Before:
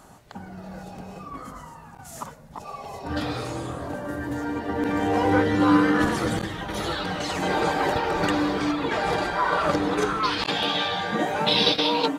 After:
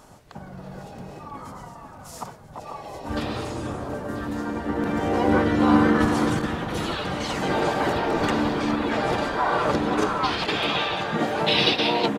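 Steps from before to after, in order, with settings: on a send: echo whose repeats swap between lows and highs 494 ms, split 1.9 kHz, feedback 52%, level -8 dB; on the sum: harmony voices -5 st -2 dB; trim -2 dB

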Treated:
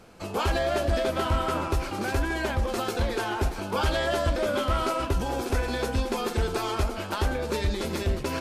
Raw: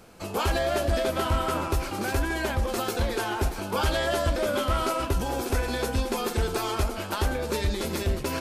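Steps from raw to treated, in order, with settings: treble shelf 9.5 kHz -9.5 dB

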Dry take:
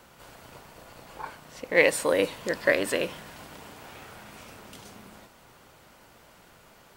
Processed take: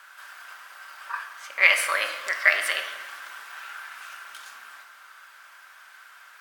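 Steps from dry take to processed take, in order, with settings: resonant high-pass 1.3 kHz, resonance Q 3.6; reverberation RT60 1.3 s, pre-delay 6 ms, DRR 4.5 dB; speed mistake 44.1 kHz file played as 48 kHz; trim +1 dB

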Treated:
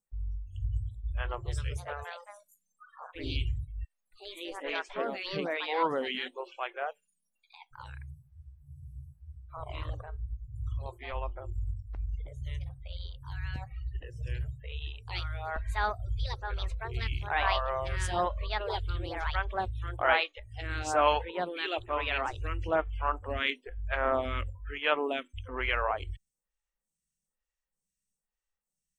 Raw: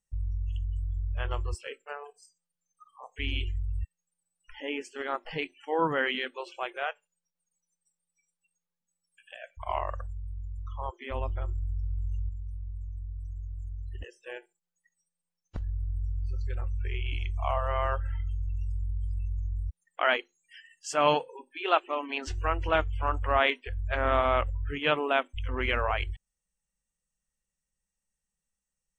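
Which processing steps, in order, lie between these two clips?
ever faster or slower copies 472 ms, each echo +3 st, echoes 2; spectral freeze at 8.13 s, 1.39 s; lamp-driven phase shifter 1.1 Hz

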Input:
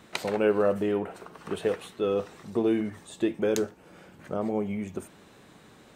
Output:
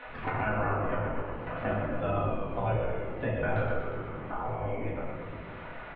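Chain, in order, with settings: 3.50–4.39 s: bass shelf 140 Hz +11.5 dB; spectral gate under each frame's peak -15 dB weak; level held to a coarse grid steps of 13 dB; Gaussian low-pass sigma 4.2 samples; frequency-shifting echo 119 ms, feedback 60%, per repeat -54 Hz, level -5 dB; simulated room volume 140 m³, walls mixed, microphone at 1.9 m; three bands compressed up and down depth 70%; trim +4.5 dB

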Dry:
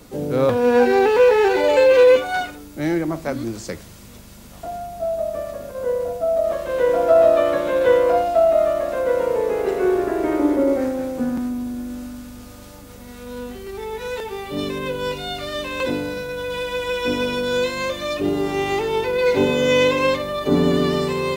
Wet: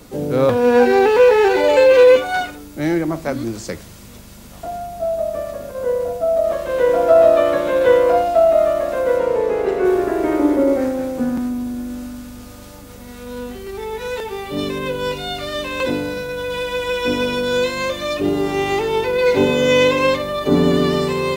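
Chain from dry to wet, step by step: 9.17–9.84 s: treble shelf 9.9 kHz -> 6.6 kHz -11 dB; trim +2.5 dB

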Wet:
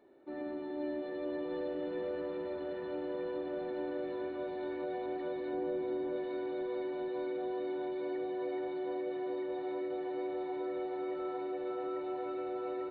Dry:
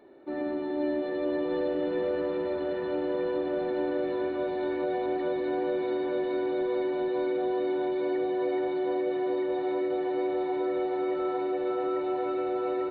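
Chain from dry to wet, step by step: 5.53–6.16 s: tilt shelf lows +4.5 dB, about 680 Hz; trim -8.5 dB

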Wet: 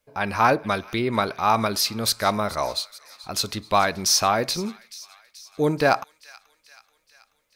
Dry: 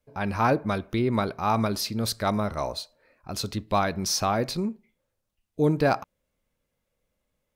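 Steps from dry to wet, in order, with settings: bass shelf 470 Hz -11 dB; feedback echo behind a high-pass 431 ms, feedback 59%, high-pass 2.1 kHz, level -17 dB; trim +7.5 dB

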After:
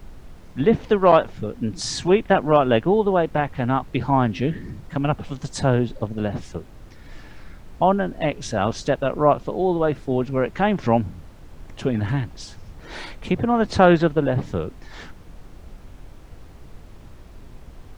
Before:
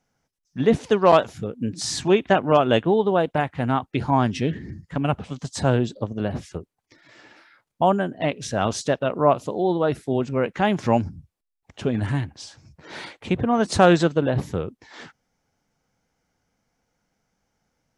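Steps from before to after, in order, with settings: low-pass that closes with the level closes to 2.8 kHz, closed at -17.5 dBFS; added noise brown -40 dBFS; trim +1 dB

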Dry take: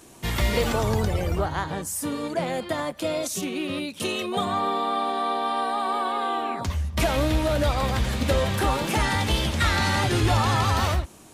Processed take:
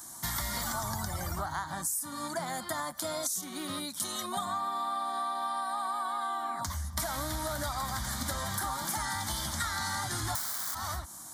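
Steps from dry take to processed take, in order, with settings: 10.35–10.75 s: integer overflow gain 20 dB; tilt EQ +2.5 dB/octave; static phaser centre 1.1 kHz, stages 4; compression 6:1, threshold -33 dBFS, peak gain reduction 16.5 dB; trim +2 dB

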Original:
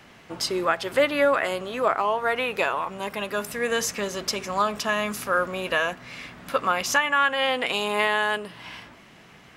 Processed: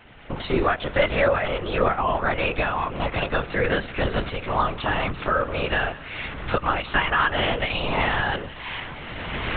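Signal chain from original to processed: recorder AGC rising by 21 dB/s; thinning echo 186 ms, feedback 73%, level -21 dB; LPC vocoder at 8 kHz whisper

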